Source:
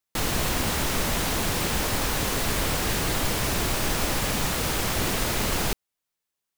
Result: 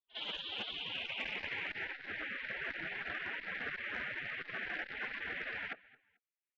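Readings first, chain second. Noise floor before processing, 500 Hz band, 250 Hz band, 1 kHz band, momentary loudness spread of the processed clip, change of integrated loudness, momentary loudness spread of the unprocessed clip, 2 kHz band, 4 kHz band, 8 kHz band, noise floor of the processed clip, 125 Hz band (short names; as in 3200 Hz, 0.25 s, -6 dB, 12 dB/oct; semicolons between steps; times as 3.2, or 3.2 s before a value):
-85 dBFS, -20.5 dB, -23.5 dB, -19.5 dB, 3 LU, -14.5 dB, 0 LU, -7.0 dB, -13.5 dB, under -40 dB, under -85 dBFS, -30.0 dB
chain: low shelf 410 Hz +2.5 dB; mistuned SSB -330 Hz 230–3500 Hz; dynamic EQ 1200 Hz, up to +6 dB, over -49 dBFS, Q 2.4; low-pass sweep 2100 Hz -> 1000 Hz, 0.68–1.96; on a send: feedback echo 0.219 s, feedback 25%, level -22 dB; on the sum: spectral gate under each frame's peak -20 dB weak; pre-echo 54 ms -21 dB; core saturation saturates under 1000 Hz; gain +6.5 dB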